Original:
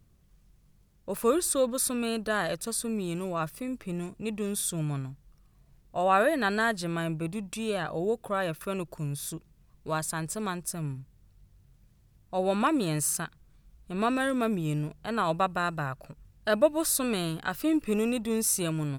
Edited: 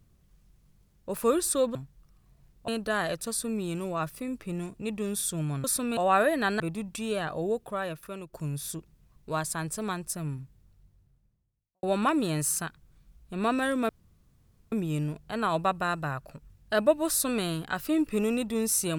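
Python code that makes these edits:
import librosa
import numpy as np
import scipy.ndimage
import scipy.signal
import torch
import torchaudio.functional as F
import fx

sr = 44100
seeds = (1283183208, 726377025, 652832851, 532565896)

y = fx.studio_fade_out(x, sr, start_s=10.98, length_s=1.43)
y = fx.edit(y, sr, fx.swap(start_s=1.75, length_s=0.33, other_s=5.04, other_length_s=0.93),
    fx.cut(start_s=6.6, length_s=0.58),
    fx.fade_out_to(start_s=8.0, length_s=0.91, floor_db=-10.5),
    fx.insert_room_tone(at_s=14.47, length_s=0.83), tone=tone)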